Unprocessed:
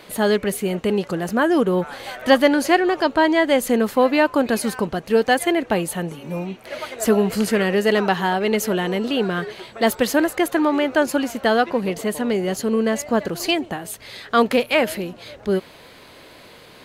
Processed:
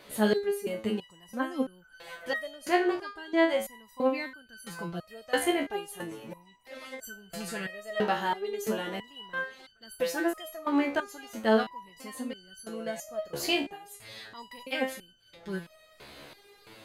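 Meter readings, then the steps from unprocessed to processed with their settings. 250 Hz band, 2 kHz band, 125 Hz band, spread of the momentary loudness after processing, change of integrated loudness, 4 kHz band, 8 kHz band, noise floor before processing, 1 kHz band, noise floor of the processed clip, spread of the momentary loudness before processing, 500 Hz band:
−12.5 dB, −10.5 dB, −15.0 dB, 19 LU, −11.5 dB, −10.0 dB, −12.0 dB, −45 dBFS, −12.0 dB, −59 dBFS, 11 LU, −12.0 dB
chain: speech leveller within 5 dB 2 s
step-sequenced resonator 3 Hz 71–1,500 Hz

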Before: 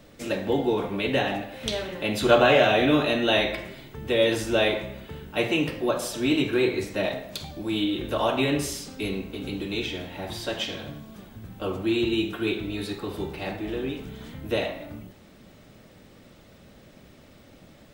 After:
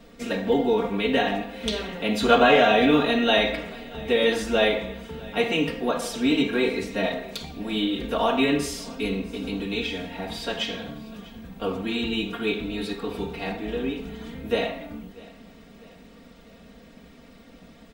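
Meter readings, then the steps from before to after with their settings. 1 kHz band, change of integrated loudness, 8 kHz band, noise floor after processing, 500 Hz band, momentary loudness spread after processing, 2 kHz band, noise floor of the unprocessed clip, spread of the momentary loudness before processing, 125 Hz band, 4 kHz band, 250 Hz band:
+3.5 dB, +1.5 dB, −1.5 dB, −50 dBFS, +1.0 dB, 16 LU, +1.5 dB, −52 dBFS, 16 LU, −2.5 dB, +1.5 dB, +1.5 dB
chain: high-shelf EQ 7,600 Hz −7.5 dB
comb filter 4.3 ms, depth 85%
on a send: repeating echo 646 ms, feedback 50%, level −22 dB

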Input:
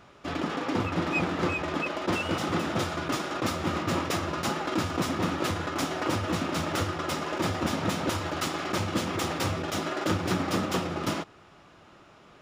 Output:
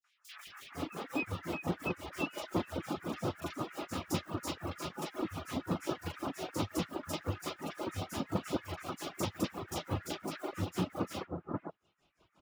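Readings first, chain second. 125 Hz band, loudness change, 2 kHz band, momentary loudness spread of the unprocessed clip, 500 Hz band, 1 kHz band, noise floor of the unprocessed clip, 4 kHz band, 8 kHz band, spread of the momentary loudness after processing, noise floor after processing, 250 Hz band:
−8.0 dB, −9.0 dB, −12.0 dB, 3 LU, −8.5 dB, −11.0 dB, −54 dBFS, −10.5 dB, −9.0 dB, 6 LU, −74 dBFS, −8.0 dB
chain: in parallel at −5.5 dB: bit reduction 6 bits
on the sum: two-band tremolo in antiphase 5.7 Hz, depth 100%, crossover 2,000 Hz
three-band delay without the direct sound highs, mids, lows 40/470 ms, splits 1,500/5,400 Hz
reverb reduction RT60 1.2 s
level −6.5 dB

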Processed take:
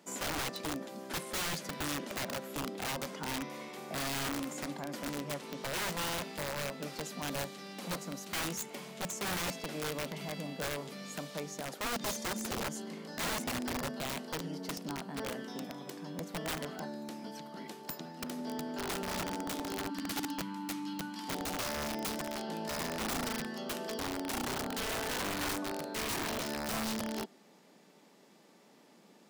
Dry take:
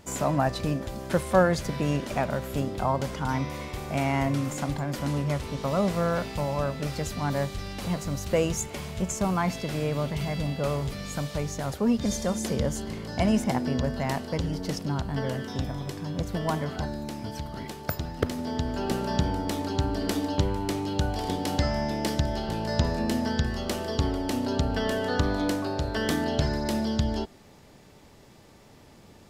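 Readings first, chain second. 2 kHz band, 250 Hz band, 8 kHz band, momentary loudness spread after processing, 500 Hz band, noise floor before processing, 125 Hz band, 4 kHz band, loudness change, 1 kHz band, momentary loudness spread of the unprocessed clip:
−3.5 dB, −11.0 dB, −2.0 dB, 7 LU, −11.0 dB, −52 dBFS, −17.0 dB, −2.5 dB, −9.0 dB, −8.0 dB, 7 LU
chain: gain on a spectral selection 0:19.89–0:21.29, 330–870 Hz −22 dB
Butterworth high-pass 170 Hz 48 dB per octave
wrap-around overflow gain 23 dB
level −7 dB

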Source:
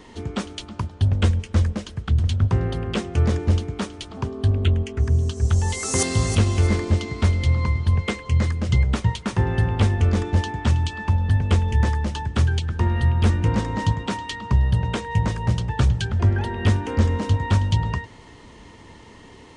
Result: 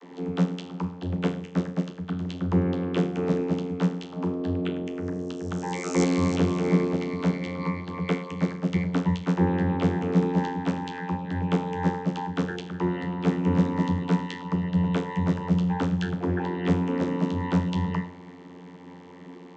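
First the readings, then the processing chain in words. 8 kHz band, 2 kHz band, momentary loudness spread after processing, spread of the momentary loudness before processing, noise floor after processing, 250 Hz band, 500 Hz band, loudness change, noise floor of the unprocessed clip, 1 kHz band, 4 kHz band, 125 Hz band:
−13.0 dB, −5.5 dB, 9 LU, 7 LU, −45 dBFS, +3.5 dB, +1.0 dB, −4.5 dB, −45 dBFS, −2.0 dB, −8.5 dB, −9.0 dB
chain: four-comb reverb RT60 0.5 s, combs from 26 ms, DRR 8.5 dB
channel vocoder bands 32, saw 89 Hz

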